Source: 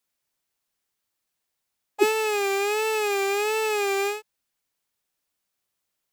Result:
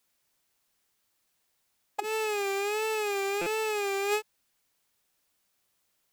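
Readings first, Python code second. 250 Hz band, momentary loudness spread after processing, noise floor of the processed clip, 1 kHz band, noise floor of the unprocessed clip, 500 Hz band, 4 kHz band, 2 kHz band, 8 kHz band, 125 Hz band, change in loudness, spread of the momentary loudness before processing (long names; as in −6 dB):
−7.0 dB, 4 LU, −75 dBFS, −5.0 dB, −81 dBFS, −6.0 dB, −5.5 dB, −5.5 dB, −5.5 dB, can't be measured, −6.0 dB, 3 LU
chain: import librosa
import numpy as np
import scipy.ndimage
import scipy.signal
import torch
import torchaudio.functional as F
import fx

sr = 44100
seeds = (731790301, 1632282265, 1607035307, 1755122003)

y = fx.over_compress(x, sr, threshold_db=-30.0, ratio=-1.0)
y = fx.buffer_glitch(y, sr, at_s=(3.41,), block=256, repeats=8)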